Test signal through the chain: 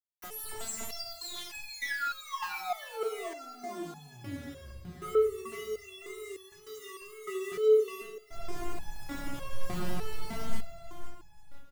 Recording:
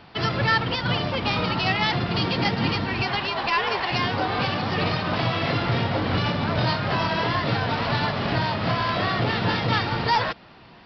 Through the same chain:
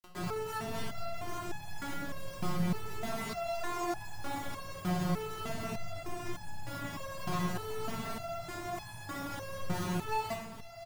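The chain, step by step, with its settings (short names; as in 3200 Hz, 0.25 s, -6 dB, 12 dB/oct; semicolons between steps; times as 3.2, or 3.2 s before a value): median filter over 15 samples; thirty-one-band EQ 100 Hz +5 dB, 160 Hz +9 dB, 1600 Hz -8 dB; limiter -21 dBFS; companded quantiser 2-bit; wow and flutter 120 cents; feedback echo 0.506 s, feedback 38%, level -9 dB; shoebox room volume 1900 m³, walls furnished, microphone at 3 m; stepped resonator 3.3 Hz 180–850 Hz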